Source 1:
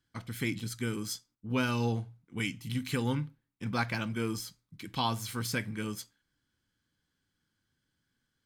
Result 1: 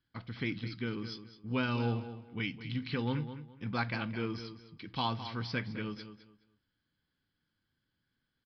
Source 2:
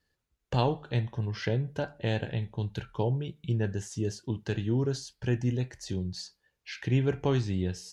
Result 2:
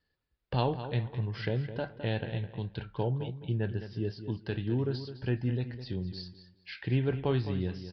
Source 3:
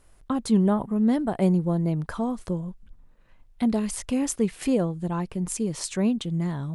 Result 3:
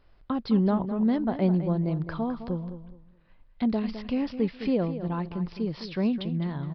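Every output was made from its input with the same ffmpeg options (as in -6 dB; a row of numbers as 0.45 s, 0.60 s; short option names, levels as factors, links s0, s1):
-filter_complex "[0:a]asplit=2[s0][s1];[s1]adelay=210,lowpass=f=4100:p=1,volume=0.282,asplit=2[s2][s3];[s3]adelay=210,lowpass=f=4100:p=1,volume=0.25,asplit=2[s4][s5];[s5]adelay=210,lowpass=f=4100:p=1,volume=0.25[s6];[s2][s4][s6]amix=inputs=3:normalize=0[s7];[s0][s7]amix=inputs=2:normalize=0,aresample=11025,aresample=44100,volume=0.75"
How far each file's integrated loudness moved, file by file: -2.5 LU, -2.5 LU, -2.5 LU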